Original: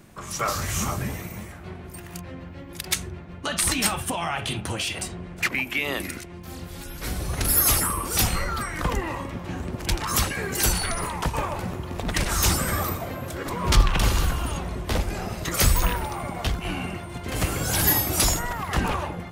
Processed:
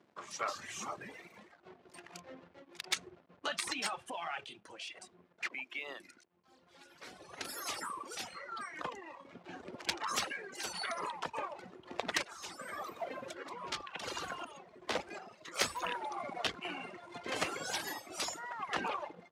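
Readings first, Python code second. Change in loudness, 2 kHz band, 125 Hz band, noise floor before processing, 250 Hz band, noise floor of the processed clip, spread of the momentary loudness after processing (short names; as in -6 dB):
-14.5 dB, -11.0 dB, -31.0 dB, -40 dBFS, -18.5 dB, -67 dBFS, 16 LU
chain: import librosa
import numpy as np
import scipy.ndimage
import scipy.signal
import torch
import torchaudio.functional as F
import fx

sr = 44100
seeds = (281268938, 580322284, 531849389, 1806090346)

y = fx.dereverb_blind(x, sr, rt60_s=1.5)
y = fx.backlash(y, sr, play_db=-44.5)
y = fx.bandpass_edges(y, sr, low_hz=380.0, high_hz=5800.0)
y = fx.rider(y, sr, range_db=3, speed_s=0.5)
y = fx.tremolo_random(y, sr, seeds[0], hz=2.7, depth_pct=75)
y = fx.cheby_harmonics(y, sr, harmonics=(3,), levels_db=(-15,), full_scale_db=-12.0)
y = y * librosa.db_to_amplitude(1.0)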